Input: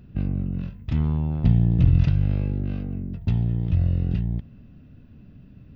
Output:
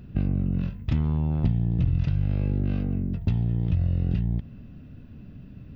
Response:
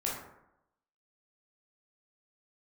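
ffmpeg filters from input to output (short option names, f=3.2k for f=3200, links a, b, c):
-af "acompressor=threshold=-23dB:ratio=6,volume=3.5dB"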